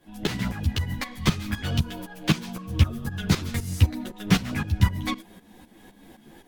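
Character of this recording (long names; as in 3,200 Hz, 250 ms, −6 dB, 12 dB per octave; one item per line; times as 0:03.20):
tremolo saw up 3.9 Hz, depth 80%
a shimmering, thickened sound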